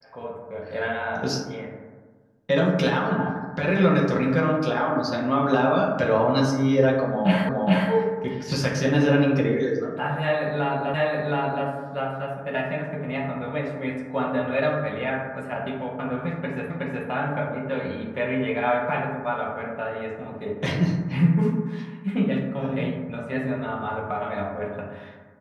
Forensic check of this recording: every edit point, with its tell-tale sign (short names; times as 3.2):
7.49 repeat of the last 0.42 s
10.94 repeat of the last 0.72 s
16.7 repeat of the last 0.37 s